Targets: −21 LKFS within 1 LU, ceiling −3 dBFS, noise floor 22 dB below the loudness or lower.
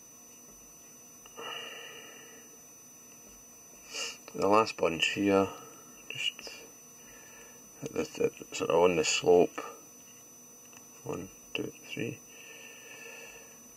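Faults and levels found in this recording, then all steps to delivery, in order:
interfering tone 6,000 Hz; level of the tone −52 dBFS; integrated loudness −30.5 LKFS; sample peak −9.5 dBFS; target loudness −21.0 LKFS
→ notch filter 6,000 Hz, Q 30
level +9.5 dB
brickwall limiter −3 dBFS

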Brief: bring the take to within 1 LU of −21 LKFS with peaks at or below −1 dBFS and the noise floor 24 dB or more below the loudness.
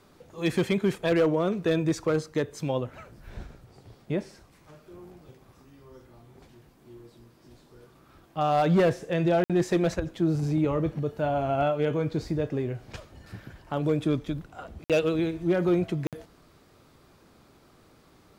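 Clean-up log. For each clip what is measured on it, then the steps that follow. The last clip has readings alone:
share of clipped samples 0.5%; peaks flattened at −16.5 dBFS; number of dropouts 3; longest dropout 57 ms; integrated loudness −27.0 LKFS; sample peak −16.5 dBFS; target loudness −21.0 LKFS
→ clipped peaks rebuilt −16.5 dBFS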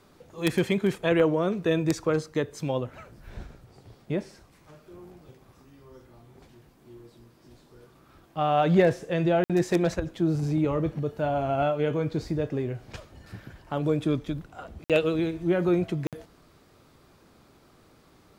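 share of clipped samples 0.0%; number of dropouts 3; longest dropout 57 ms
→ repair the gap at 0:09.44/0:14.84/0:16.07, 57 ms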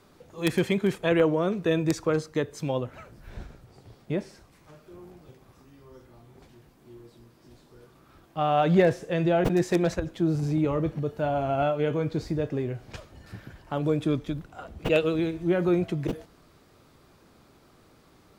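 number of dropouts 0; integrated loudness −26.5 LKFS; sample peak −7.5 dBFS; target loudness −21.0 LKFS
→ level +5.5 dB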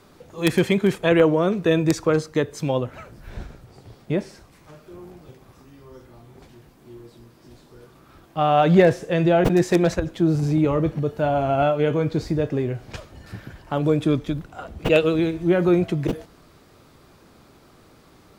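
integrated loudness −21.0 LKFS; sample peak −2.0 dBFS; background noise floor −53 dBFS

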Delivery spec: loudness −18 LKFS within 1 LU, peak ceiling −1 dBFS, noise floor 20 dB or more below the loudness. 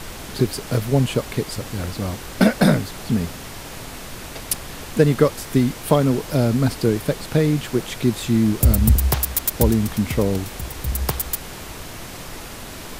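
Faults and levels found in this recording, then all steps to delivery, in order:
background noise floor −35 dBFS; target noise floor −41 dBFS; integrated loudness −21.0 LKFS; sample peak −2.0 dBFS; target loudness −18.0 LKFS
→ noise reduction from a noise print 6 dB
level +3 dB
brickwall limiter −1 dBFS

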